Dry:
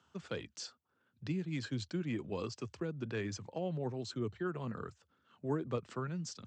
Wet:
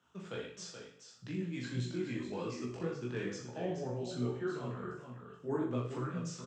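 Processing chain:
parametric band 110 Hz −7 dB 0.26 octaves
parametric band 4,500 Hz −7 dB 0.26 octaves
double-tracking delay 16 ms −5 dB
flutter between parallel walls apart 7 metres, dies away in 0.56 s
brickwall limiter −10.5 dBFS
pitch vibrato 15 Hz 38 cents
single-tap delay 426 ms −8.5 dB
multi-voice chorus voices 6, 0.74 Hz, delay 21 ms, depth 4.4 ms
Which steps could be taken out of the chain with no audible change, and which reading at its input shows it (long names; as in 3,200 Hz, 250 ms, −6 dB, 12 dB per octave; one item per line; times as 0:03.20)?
brickwall limiter −10.5 dBFS: peak of its input −20.5 dBFS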